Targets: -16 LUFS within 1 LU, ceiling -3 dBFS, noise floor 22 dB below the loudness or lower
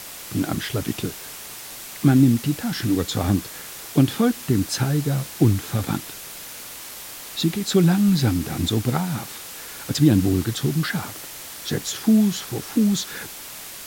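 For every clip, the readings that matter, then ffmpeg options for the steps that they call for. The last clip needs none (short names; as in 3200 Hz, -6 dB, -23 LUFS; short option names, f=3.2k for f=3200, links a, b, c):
noise floor -37 dBFS; noise floor target -44 dBFS; loudness -22.0 LUFS; peak -4.5 dBFS; loudness target -16.0 LUFS
-> -af "afftdn=nr=7:nf=-37"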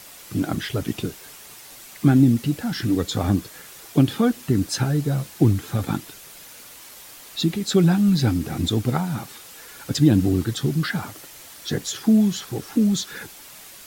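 noise floor -43 dBFS; noise floor target -44 dBFS
-> -af "afftdn=nr=6:nf=-43"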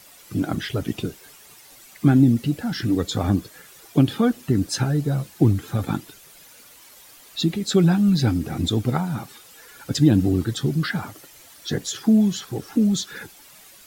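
noise floor -48 dBFS; loudness -22.0 LUFS; peak -4.5 dBFS; loudness target -16.0 LUFS
-> -af "volume=6dB,alimiter=limit=-3dB:level=0:latency=1"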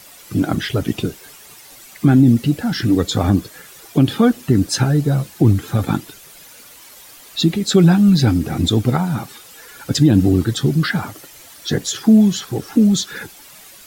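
loudness -16.5 LUFS; peak -3.0 dBFS; noise floor -42 dBFS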